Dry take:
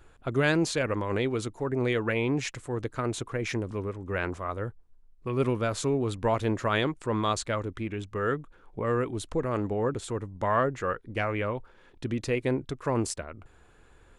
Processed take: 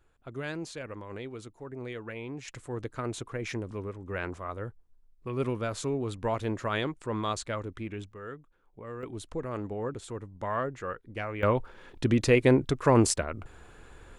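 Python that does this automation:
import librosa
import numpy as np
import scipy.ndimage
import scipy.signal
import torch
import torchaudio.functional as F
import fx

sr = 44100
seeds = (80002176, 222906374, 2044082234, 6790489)

y = fx.gain(x, sr, db=fx.steps((0.0, -12.0), (2.48, -4.0), (8.12, -13.5), (9.03, -6.0), (11.43, 6.5)))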